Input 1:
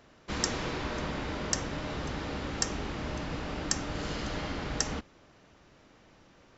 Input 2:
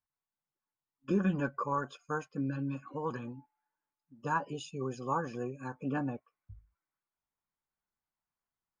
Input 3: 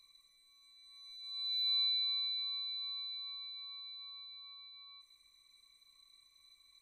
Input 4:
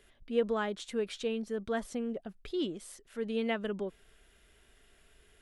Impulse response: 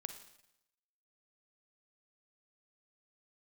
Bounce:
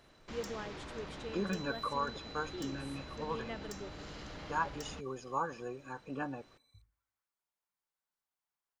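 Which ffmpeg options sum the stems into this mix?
-filter_complex "[0:a]asoftclip=type=tanh:threshold=-27dB,volume=-4.5dB[link_01];[1:a]lowshelf=frequency=240:gain=-11.5,adelay=250,volume=-2dB,asplit=2[link_02][link_03];[link_03]volume=-13.5dB[link_04];[2:a]asoftclip=type=hard:threshold=-30dB,volume=-8.5dB[link_05];[3:a]volume=-13dB,asplit=2[link_06][link_07];[link_07]volume=-8dB[link_08];[link_01][link_05]amix=inputs=2:normalize=0,alimiter=level_in=15dB:limit=-24dB:level=0:latency=1:release=200,volume=-15dB,volume=0dB[link_09];[4:a]atrim=start_sample=2205[link_10];[link_04][link_08]amix=inputs=2:normalize=0[link_11];[link_11][link_10]afir=irnorm=-1:irlink=0[link_12];[link_02][link_06][link_09][link_12]amix=inputs=4:normalize=0,equalizer=frequency=240:width_type=o:width=0.22:gain=-4"

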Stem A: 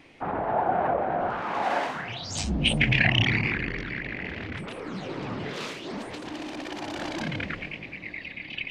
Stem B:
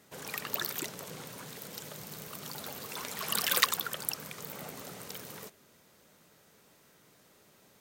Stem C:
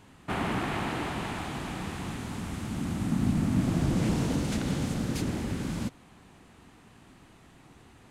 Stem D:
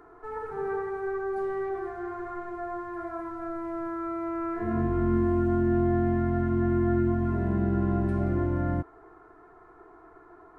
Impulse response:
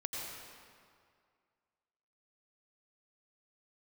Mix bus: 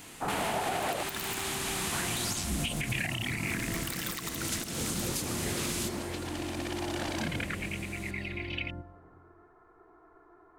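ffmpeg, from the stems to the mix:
-filter_complex "[0:a]highshelf=frequency=7600:gain=11,volume=-2.5dB,asplit=3[link_01][link_02][link_03];[link_01]atrim=end=1.03,asetpts=PTS-STARTPTS,afade=type=out:start_time=1.026:duration=0.004:curve=hsin[link_04];[link_02]atrim=start=1.03:end=1.92,asetpts=PTS-STARTPTS,volume=0[link_05];[link_03]atrim=start=1.92,asetpts=PTS-STARTPTS,afade=type=in:duration=0.004:curve=hsin[link_06];[link_04][link_05][link_06]concat=n=3:v=0:a=1[link_07];[1:a]acrusher=bits=4:mix=0:aa=0.5,adelay=550,volume=-0.5dB,asplit=2[link_08][link_09];[link_09]volume=-11dB[link_10];[2:a]acompressor=threshold=-34dB:ratio=2,crystalizer=i=8.5:c=0,volume=-4dB,asplit=2[link_11][link_12];[link_12]volume=-7.5dB[link_13];[3:a]acompressor=threshold=-31dB:ratio=6,volume=-10dB,asplit=2[link_14][link_15];[link_15]volume=-5.5dB[link_16];[4:a]atrim=start_sample=2205[link_17];[link_10][link_13][link_16]amix=inputs=3:normalize=0[link_18];[link_18][link_17]afir=irnorm=-1:irlink=0[link_19];[link_07][link_08][link_11][link_14][link_19]amix=inputs=5:normalize=0,alimiter=limit=-21.5dB:level=0:latency=1:release=244"

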